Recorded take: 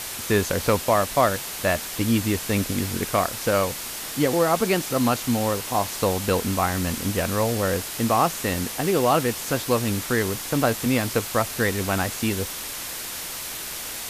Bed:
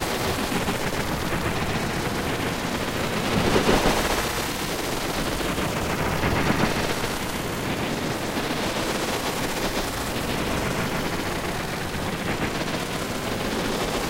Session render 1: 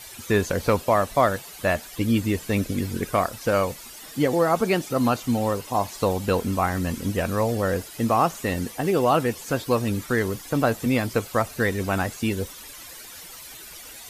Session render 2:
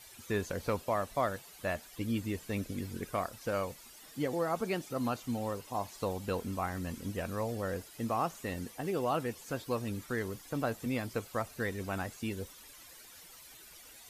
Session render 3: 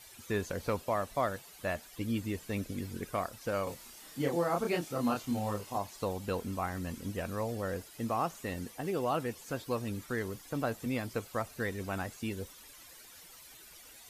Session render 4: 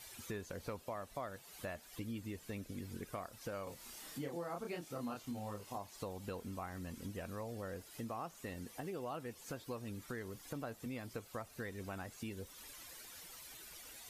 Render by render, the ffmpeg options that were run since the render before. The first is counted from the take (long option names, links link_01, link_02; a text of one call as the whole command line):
ffmpeg -i in.wav -af "afftdn=noise_reduction=13:noise_floor=-33" out.wav
ffmpeg -i in.wav -af "volume=-12dB" out.wav
ffmpeg -i in.wav -filter_complex "[0:a]asettb=1/sr,asplit=3[link_01][link_02][link_03];[link_01]atrim=end=3.644[link_04];[link_02]atrim=start=3.64:end=5.78,asetpts=PTS-STARTPTS,afade=type=in:duration=0.004:curve=qsin,afade=type=out:start_time=2.136:duration=0.004:curve=qsin,asplit=2[link_05][link_06];[link_06]adelay=29,volume=-2dB[link_07];[link_05][link_07]amix=inputs=2:normalize=0,atrim=end_sample=94374[link_08];[link_03]atrim=start=5.776[link_09];[link_04][link_08]acrossfade=duration=0.004:curve1=hsin:curve2=qsin[link_10];[link_10][link_09]acrossfade=duration=0.004:curve1=qsin:curve2=hsin" out.wav
ffmpeg -i in.wav -af "acompressor=threshold=-44dB:ratio=3" out.wav